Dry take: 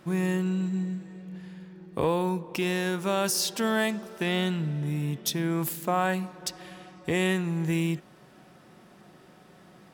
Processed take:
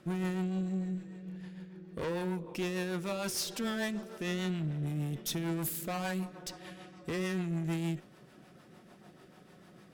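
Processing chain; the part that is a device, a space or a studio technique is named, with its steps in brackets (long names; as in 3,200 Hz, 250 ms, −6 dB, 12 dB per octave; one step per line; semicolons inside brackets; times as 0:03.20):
overdriven rotary cabinet (tube saturation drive 29 dB, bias 0.35; rotating-speaker cabinet horn 6.7 Hz)
0:05.06–0:06.25: high-shelf EQ 6,200 Hz +6 dB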